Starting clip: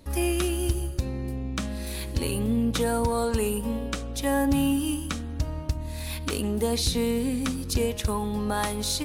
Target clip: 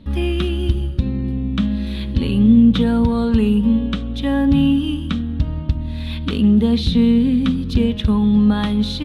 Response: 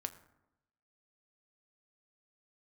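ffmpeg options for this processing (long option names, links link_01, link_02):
-af "firequalizer=gain_entry='entry(120,0);entry(210,9);entry(310,-4);entry(720,-10);entry(1200,-6);entry(2300,-7);entry(3400,1);entry(4800,-15);entry(6800,-24);entry(13000,-27)':delay=0.05:min_phase=1,volume=8.5dB"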